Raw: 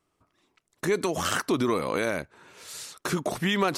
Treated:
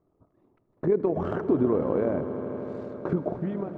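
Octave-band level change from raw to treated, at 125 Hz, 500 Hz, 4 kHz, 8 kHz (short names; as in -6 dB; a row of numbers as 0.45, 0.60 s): +2.0 dB, +2.5 dB, under -25 dB, under -35 dB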